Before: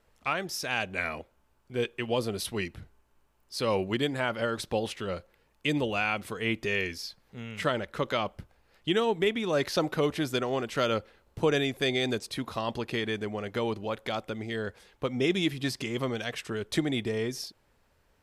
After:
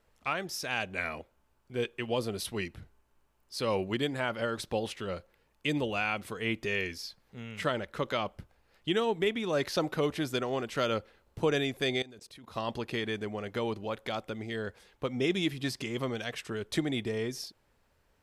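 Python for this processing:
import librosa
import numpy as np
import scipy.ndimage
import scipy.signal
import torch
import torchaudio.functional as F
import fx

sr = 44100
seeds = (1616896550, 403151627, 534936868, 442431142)

y = fx.level_steps(x, sr, step_db=24, at=(12.02, 12.56))
y = F.gain(torch.from_numpy(y), -2.5).numpy()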